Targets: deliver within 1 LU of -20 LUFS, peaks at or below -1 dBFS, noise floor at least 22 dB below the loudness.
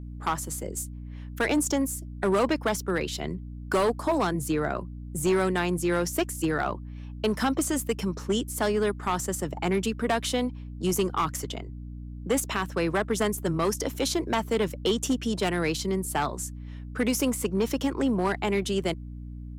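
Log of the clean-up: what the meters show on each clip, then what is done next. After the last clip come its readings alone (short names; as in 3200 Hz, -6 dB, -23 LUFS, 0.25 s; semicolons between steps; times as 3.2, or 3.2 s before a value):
clipped 1.2%; flat tops at -18.5 dBFS; hum 60 Hz; harmonics up to 300 Hz; hum level -36 dBFS; loudness -27.5 LUFS; peak -18.5 dBFS; loudness target -20.0 LUFS
-> clip repair -18.5 dBFS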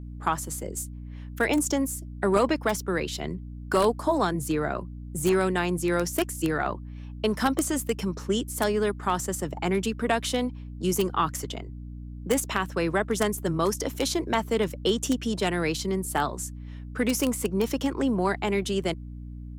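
clipped 0.0%; hum 60 Hz; harmonics up to 300 Hz; hum level -36 dBFS
-> de-hum 60 Hz, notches 5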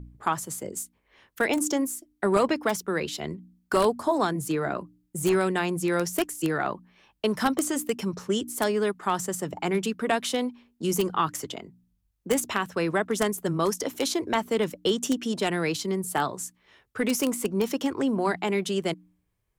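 hum none; loudness -27.5 LUFS; peak -9.0 dBFS; loudness target -20.0 LUFS
-> gain +7.5 dB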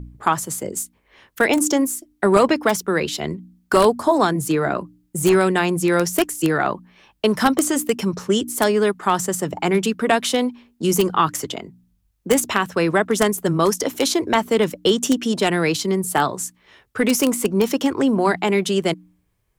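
loudness -20.0 LUFS; peak -1.5 dBFS; noise floor -66 dBFS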